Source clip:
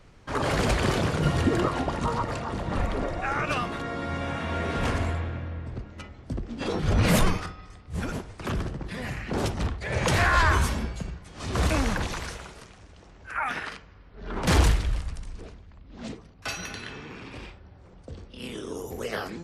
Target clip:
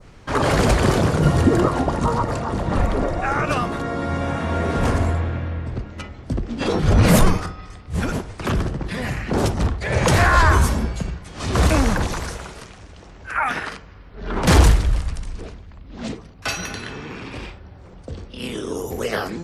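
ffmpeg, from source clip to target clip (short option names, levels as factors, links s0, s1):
-af "adynamicequalizer=threshold=0.00562:dfrequency=2800:dqfactor=0.75:tfrequency=2800:tqfactor=0.75:attack=5:release=100:ratio=0.375:range=4:mode=cutabove:tftype=bell,acontrast=27,volume=1.41"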